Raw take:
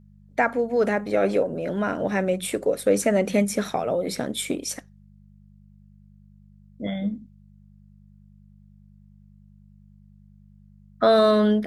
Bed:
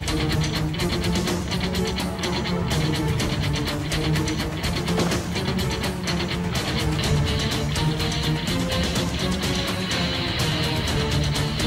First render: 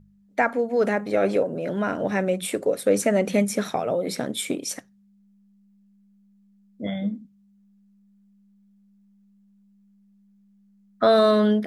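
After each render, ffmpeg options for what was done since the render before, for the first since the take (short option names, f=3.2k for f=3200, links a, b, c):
-af "bandreject=f=50:t=h:w=4,bandreject=f=100:t=h:w=4,bandreject=f=150:t=h:w=4"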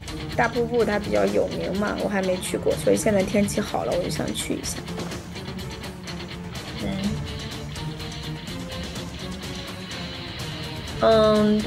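-filter_complex "[1:a]volume=-9dB[a];[0:a][a]amix=inputs=2:normalize=0"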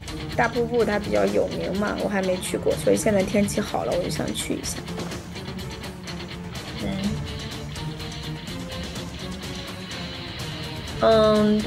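-af anull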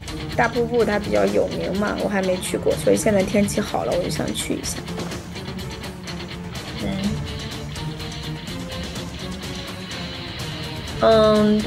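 -af "volume=2.5dB"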